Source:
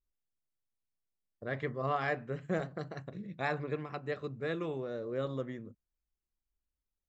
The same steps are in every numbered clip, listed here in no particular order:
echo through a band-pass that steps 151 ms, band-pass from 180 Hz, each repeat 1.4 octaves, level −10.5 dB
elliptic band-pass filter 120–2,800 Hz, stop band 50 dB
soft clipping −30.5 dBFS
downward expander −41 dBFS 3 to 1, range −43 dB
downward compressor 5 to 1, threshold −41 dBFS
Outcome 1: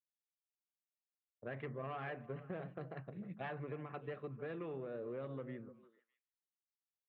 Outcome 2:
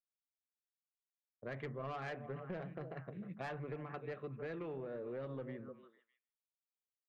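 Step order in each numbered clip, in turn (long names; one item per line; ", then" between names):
soft clipping, then elliptic band-pass filter, then downward expander, then downward compressor, then echo through a band-pass that steps
elliptic band-pass filter, then downward expander, then echo through a band-pass that steps, then soft clipping, then downward compressor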